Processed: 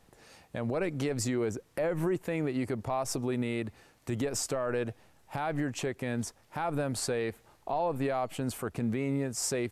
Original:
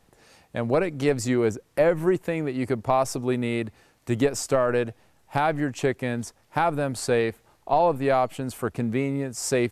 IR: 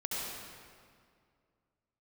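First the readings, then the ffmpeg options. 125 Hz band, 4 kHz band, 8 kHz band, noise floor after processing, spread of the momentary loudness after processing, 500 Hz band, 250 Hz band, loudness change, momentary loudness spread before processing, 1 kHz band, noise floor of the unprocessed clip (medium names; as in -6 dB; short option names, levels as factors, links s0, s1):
-5.5 dB, -4.0 dB, -2.0 dB, -64 dBFS, 7 LU, -9.0 dB, -6.0 dB, -7.5 dB, 9 LU, -10.0 dB, -63 dBFS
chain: -af "alimiter=limit=0.0891:level=0:latency=1:release=95,volume=0.891"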